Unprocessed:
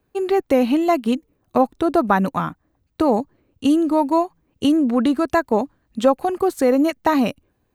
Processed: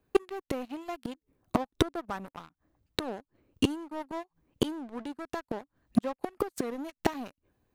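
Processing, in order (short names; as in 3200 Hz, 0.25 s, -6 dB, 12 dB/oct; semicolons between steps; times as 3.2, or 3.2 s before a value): flipped gate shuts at -17 dBFS, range -30 dB; sample leveller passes 3; record warp 33 1/3 rpm, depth 100 cents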